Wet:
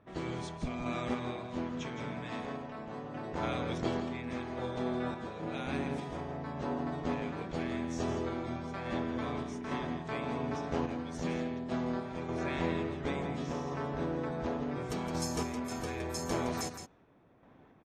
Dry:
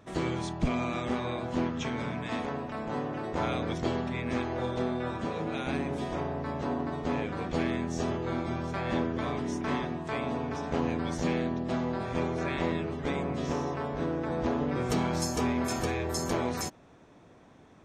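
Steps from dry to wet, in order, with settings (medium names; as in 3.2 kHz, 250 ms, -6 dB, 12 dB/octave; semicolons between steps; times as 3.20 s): level-controlled noise filter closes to 2.4 kHz, open at -27.5 dBFS; random-step tremolo; delay 166 ms -8.5 dB; trim -3 dB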